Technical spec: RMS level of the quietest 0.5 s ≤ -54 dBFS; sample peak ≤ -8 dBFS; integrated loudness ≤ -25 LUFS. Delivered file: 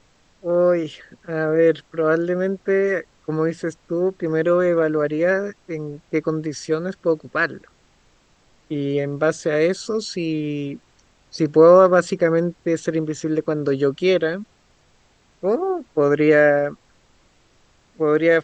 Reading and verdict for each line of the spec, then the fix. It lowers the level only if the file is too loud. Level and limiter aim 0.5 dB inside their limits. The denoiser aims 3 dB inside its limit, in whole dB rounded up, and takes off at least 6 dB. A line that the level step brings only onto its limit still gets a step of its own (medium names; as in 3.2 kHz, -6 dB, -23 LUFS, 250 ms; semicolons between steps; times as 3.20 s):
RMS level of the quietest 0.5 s -58 dBFS: pass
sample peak -2.0 dBFS: fail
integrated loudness -20.0 LUFS: fail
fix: trim -5.5 dB; peak limiter -8.5 dBFS